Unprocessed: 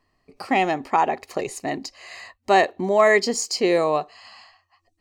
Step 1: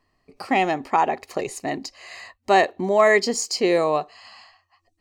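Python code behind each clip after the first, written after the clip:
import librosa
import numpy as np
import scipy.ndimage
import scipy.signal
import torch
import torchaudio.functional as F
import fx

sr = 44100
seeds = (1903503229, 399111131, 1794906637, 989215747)

y = x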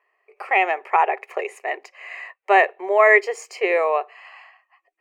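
y = scipy.signal.sosfilt(scipy.signal.ellip(4, 1.0, 40, 400.0, 'highpass', fs=sr, output='sos'), x)
y = fx.high_shelf_res(y, sr, hz=3200.0, db=-10.5, q=3.0)
y = y * librosa.db_to_amplitude(1.0)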